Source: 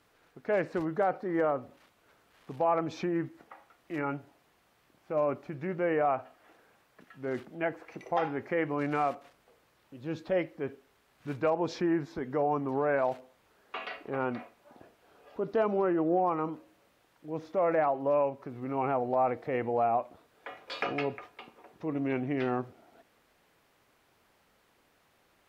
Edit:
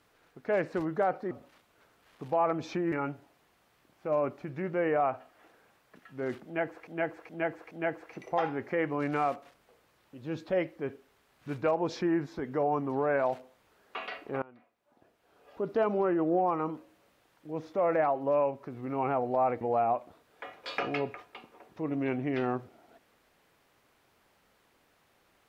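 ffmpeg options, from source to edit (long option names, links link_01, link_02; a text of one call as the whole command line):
ffmpeg -i in.wav -filter_complex "[0:a]asplit=8[link_01][link_02][link_03][link_04][link_05][link_06][link_07][link_08];[link_01]atrim=end=1.312[link_09];[link_02]atrim=start=1.588:end=3.202[link_10];[link_03]atrim=start=3.968:end=7.922[link_11];[link_04]atrim=start=7.498:end=7.922[link_12];[link_05]atrim=start=7.498:end=7.922[link_13];[link_06]atrim=start=7.498:end=14.21,asetpts=PTS-STARTPTS,afade=type=out:start_time=6.708:duration=0.004:curve=hsin:silence=0.0749894[link_14];[link_07]atrim=start=14.21:end=19.402,asetpts=PTS-STARTPTS,afade=type=in:duration=1.19:curve=qua:silence=0.0749894[link_15];[link_08]atrim=start=19.648[link_16];[link_09][link_10]acrossfade=duration=0.004:curve1=hsin:curve2=hsin[link_17];[link_17][link_11]acrossfade=duration=0.004:curve1=hsin:curve2=hsin[link_18];[link_18][link_12]acrossfade=duration=0.004:curve1=hsin:curve2=hsin[link_19];[link_19][link_13]acrossfade=duration=0.004:curve1=hsin:curve2=hsin[link_20];[link_14][link_15]concat=n=2:v=0:a=1[link_21];[link_20][link_21]acrossfade=duration=0.004:curve1=hsin:curve2=hsin[link_22];[link_22][link_16]acrossfade=duration=0.004:curve1=hsin:curve2=hsin" out.wav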